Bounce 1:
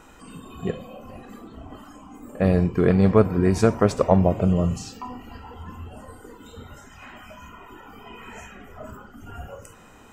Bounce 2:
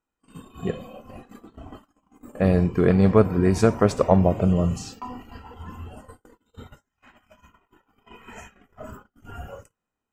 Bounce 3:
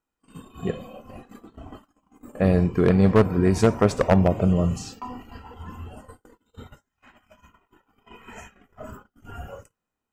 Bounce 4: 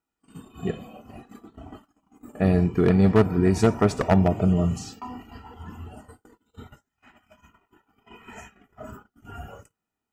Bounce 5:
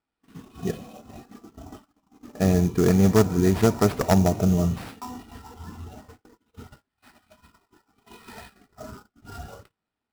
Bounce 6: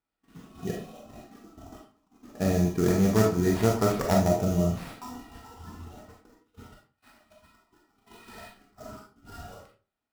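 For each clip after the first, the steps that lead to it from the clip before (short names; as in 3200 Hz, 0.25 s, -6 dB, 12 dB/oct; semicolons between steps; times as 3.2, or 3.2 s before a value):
gate -40 dBFS, range -36 dB
one-sided fold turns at -11 dBFS
notch comb 530 Hz
sample-rate reducer 6500 Hz, jitter 20%
reverb RT60 0.35 s, pre-delay 4 ms, DRR -0.5 dB; gain -5.5 dB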